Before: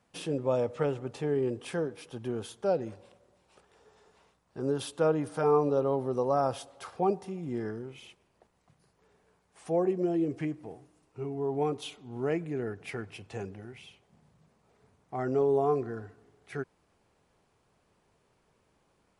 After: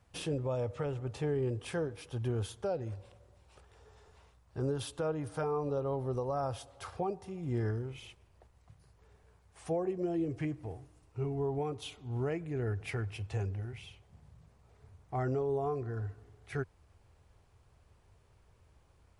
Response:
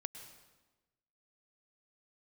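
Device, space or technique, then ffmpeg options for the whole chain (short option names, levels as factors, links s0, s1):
car stereo with a boomy subwoofer: -af "lowshelf=f=130:t=q:w=1.5:g=13,alimiter=level_in=1.19:limit=0.0631:level=0:latency=1:release=491,volume=0.841"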